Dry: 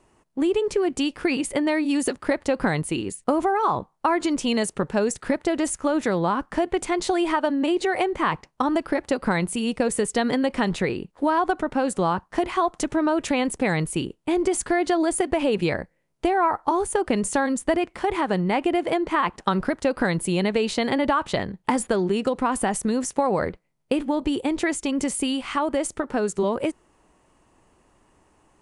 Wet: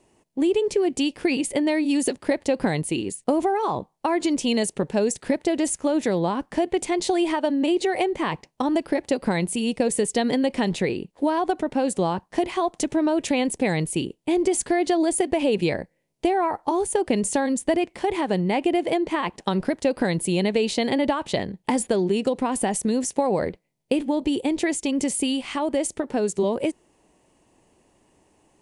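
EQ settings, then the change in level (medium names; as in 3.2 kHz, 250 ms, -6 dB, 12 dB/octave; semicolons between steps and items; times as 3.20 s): bass shelf 81 Hz -10.5 dB; peaking EQ 1.3 kHz -11.5 dB 0.83 oct; +2.0 dB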